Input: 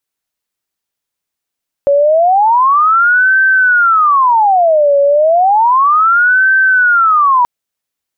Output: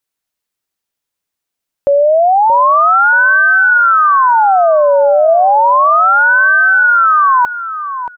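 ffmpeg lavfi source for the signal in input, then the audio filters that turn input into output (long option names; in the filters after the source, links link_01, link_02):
-f lavfi -i "aevalsrc='0.501*sin(2*PI*(1056.5*t-493.5/(2*PI*0.32)*sin(2*PI*0.32*t)))':duration=5.58:sample_rate=44100"
-filter_complex "[0:a]asplit=2[link_01][link_02];[link_02]adelay=628,lowpass=frequency=1300:poles=1,volume=-9dB,asplit=2[link_03][link_04];[link_04]adelay=628,lowpass=frequency=1300:poles=1,volume=0.28,asplit=2[link_05][link_06];[link_06]adelay=628,lowpass=frequency=1300:poles=1,volume=0.28[link_07];[link_01][link_03][link_05][link_07]amix=inputs=4:normalize=0"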